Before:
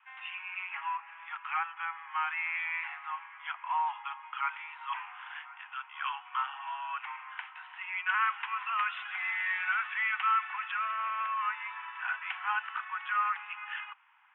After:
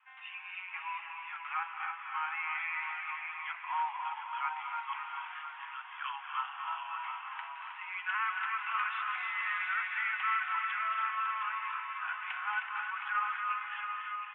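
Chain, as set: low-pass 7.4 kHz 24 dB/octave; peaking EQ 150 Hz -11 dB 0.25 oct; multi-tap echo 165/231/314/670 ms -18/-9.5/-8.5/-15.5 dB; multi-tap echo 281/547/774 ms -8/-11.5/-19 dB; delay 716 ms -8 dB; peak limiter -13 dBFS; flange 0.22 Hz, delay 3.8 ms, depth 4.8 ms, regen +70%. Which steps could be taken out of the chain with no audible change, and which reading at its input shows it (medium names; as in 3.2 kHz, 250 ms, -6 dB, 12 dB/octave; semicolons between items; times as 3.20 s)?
low-pass 7.4 kHz: input has nothing above 3.4 kHz; peaking EQ 150 Hz: input has nothing below 680 Hz; peak limiter -13 dBFS: peak at its input -16.5 dBFS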